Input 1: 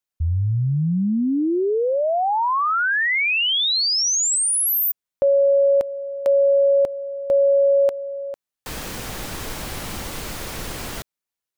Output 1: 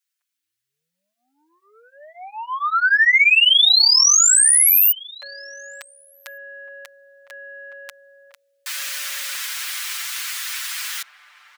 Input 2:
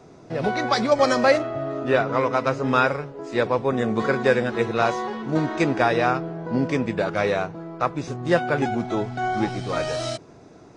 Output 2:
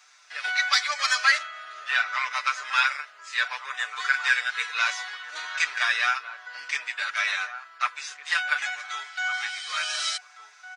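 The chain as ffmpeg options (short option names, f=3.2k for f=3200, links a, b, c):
-filter_complex "[0:a]acontrast=66,highpass=f=1.5k:w=0.5412,highpass=f=1.5k:w=1.3066,aecho=1:1:6.7:0.96,asplit=2[a][b];[b]adelay=1458,volume=-9dB,highshelf=f=4k:g=-32.8[c];[a][c]amix=inputs=2:normalize=0,volume=-2.5dB"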